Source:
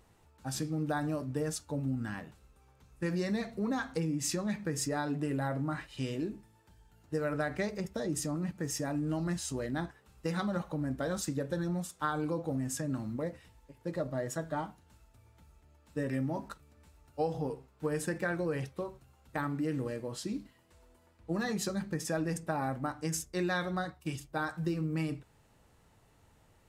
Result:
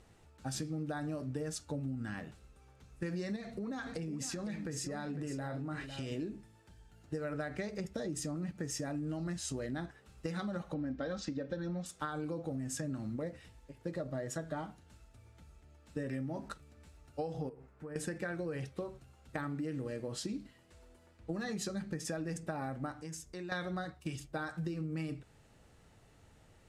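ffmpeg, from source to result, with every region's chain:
-filter_complex "[0:a]asettb=1/sr,asplit=3[a][b][c];[a]atrim=end=3.364[d];[b]atrim=start=3.36:end=6.12,asetpts=PTS-STARTPTS,afade=t=in:d=0.004:c=qsin,afade=t=out:st=2.756:d=0.004:c=qsin,acompressor=threshold=-37dB:ratio=4:attack=3.2:release=140:knee=1:detection=peak,aecho=1:1:504:0.299,atrim=end_sample=121716[e];[c]atrim=start=6.116[f];[d][e]acrossfade=d=0.004:c1=hsin:c2=qsin[g];[g][f]acrossfade=d=0.004:c1=qsin:c2=hsin,asettb=1/sr,asplit=3[h][i][j];[h]atrim=end=10.744[k];[i]atrim=start=10.74:end=11.86,asetpts=PTS-STARTPTS,afade=t=in:d=0.004:c=qsin,afade=t=out:st=1.116:d=0.004:c=qsin,lowpass=f=5.4k:w=0.5412,lowpass=f=5.4k:w=1.3066,aecho=1:1:3.8:0.41,atrim=end_sample=49392[l];[j]atrim=start=11.856[m];[k][l]acrossfade=d=0.004:c1=hsin:c2=qsin[n];[n][m]acrossfade=d=0.004:c1=qsin:c2=hsin,asettb=1/sr,asplit=3[o][p][q];[o]atrim=end=17.494[r];[p]atrim=start=17.49:end=17.96,asetpts=PTS-STARTPTS,afade=t=in:d=0.004:c=qsin,afade=t=out:st=0.466:d=0.004:c=qsin,highshelf=f=2.5k:t=q:w=1.5:g=-8,acompressor=threshold=-49dB:ratio=3:attack=3.2:release=140:knee=1:detection=peak[s];[q]atrim=start=17.956[t];[r][s]acrossfade=d=0.004:c1=hsin:c2=qsin[u];[u][t]acrossfade=d=0.004:c1=qsin:c2=hsin,asettb=1/sr,asplit=3[v][w][x];[v]atrim=end=22.994[y];[w]atrim=start=22.99:end=23.52,asetpts=PTS-STARTPTS,afade=t=in:d=0.004:c=qsin,afade=t=out:st=0.526:d=0.004:c=qsin,equalizer=f=960:w=7.9:g=9.5,acompressor=threshold=-49dB:ratio=2.5:attack=3.2:release=140:knee=1:detection=peak[z];[x]atrim=start=23.516[aa];[y][z]acrossfade=d=0.004:c1=hsin:c2=qsin[ab];[ab][aa]acrossfade=d=0.004:c1=qsin:c2=hsin,lowpass=10k,equalizer=f=980:w=3.6:g=-6,acompressor=threshold=-38dB:ratio=5,volume=2.5dB"

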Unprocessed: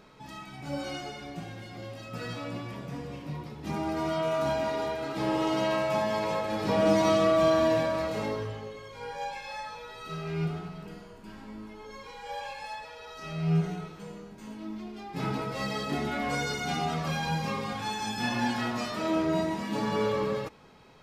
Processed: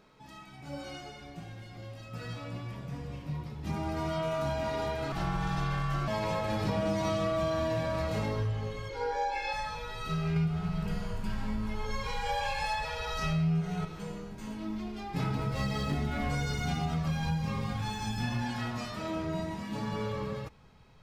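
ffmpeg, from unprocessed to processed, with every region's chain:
-filter_complex "[0:a]asettb=1/sr,asplit=3[a][b][c];[a]atrim=end=5.124[d];[b]atrim=start=5.12:end=6.08,asetpts=PTS-STARTPTS,afade=t=in:d=0.004:c=qsin,afade=t=out:st=0.956:d=0.004:c=qsin,bandreject=f=390:w=5.7,aeval=exprs='val(0)*sin(2*PI*500*n/s)':c=same[e];[c]atrim=start=6.076[f];[d][e]acrossfade=d=0.004:c1=hsin:c2=qsin[g];[g][f]acrossfade=d=0.004:c1=qsin:c2=hsin,asettb=1/sr,asplit=3[h][i][j];[h]atrim=end=8.894[k];[i]atrim=start=8.89:end=9.53,asetpts=PTS-STARTPTS,afade=t=in:d=0.004:c=qsin,afade=t=out:st=0.636:d=0.004:c=qsin,lowpass=f=3.8k:p=1,lowshelf=f=210:t=q:w=3:g=-10,aecho=1:1:2.3:0.99,atrim=end_sample=28224[l];[j]atrim=start=9.526[m];[k][l]acrossfade=d=0.004:c1=hsin:c2=qsin[n];[n][m]acrossfade=d=0.004:c1=qsin:c2=hsin,asettb=1/sr,asplit=3[o][p][q];[o]atrim=end=10.364[r];[p]atrim=start=10.36:end=13.85,asetpts=PTS-STARTPTS,afade=t=in:d=0.004:c=qsin,afade=t=out:st=3.486:d=0.004:c=qsin,equalizer=f=310:w=4.6:g=-12.5,acontrast=68[s];[q]atrim=start=13.846[t];[r][s]acrossfade=d=0.004:c1=hsin:c2=qsin[u];[u][t]acrossfade=d=0.004:c1=qsin:c2=hsin,asettb=1/sr,asplit=3[v][w][x];[v]atrim=end=15.354[y];[w]atrim=start=15.35:end=18.42,asetpts=PTS-STARTPTS,afade=t=in:d=0.004:c=qsin,afade=t=out:st=3.066:d=0.004:c=qsin,lowshelf=f=200:g=7.5,aeval=exprs='sgn(val(0))*max(abs(val(0))-0.00251,0)':c=same[z];[x]atrim=start=18.416[aa];[y][z]acrossfade=d=0.004:c1=hsin:c2=qsin[ab];[ab][aa]acrossfade=d=0.004:c1=qsin:c2=hsin,dynaudnorm=f=310:g=31:m=12dB,asubboost=boost=4.5:cutoff=140,acompressor=threshold=-22dB:ratio=5,volume=-6dB"

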